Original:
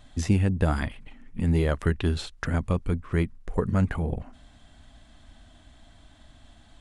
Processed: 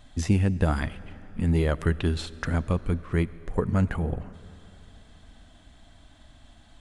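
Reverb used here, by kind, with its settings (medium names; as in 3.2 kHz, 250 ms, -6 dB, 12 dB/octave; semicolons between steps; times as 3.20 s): algorithmic reverb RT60 3.6 s, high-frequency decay 0.85×, pre-delay 30 ms, DRR 18 dB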